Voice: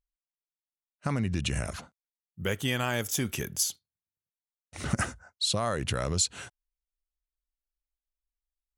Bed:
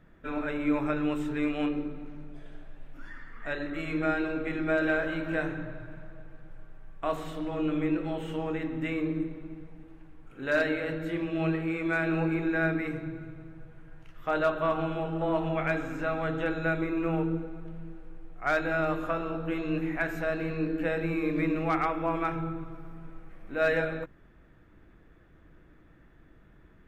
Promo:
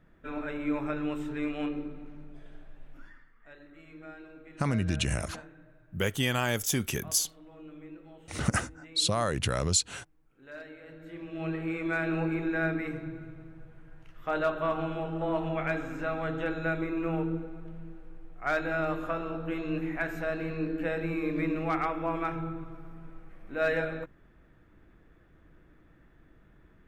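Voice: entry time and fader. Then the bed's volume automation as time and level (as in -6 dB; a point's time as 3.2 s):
3.55 s, +1.0 dB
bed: 2.97 s -3.5 dB
3.36 s -18.5 dB
10.76 s -18.5 dB
11.67 s -2 dB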